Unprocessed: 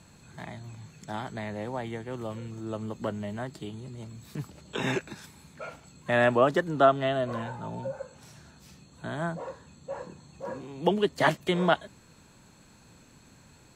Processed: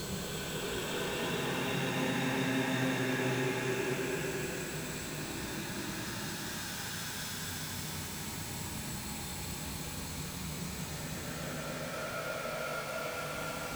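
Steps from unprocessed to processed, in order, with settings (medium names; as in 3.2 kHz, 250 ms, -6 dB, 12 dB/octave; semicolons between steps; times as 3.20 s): jump at every zero crossing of -26.5 dBFS; Paulstretch 13×, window 0.25 s, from 4.68 s; trim -8 dB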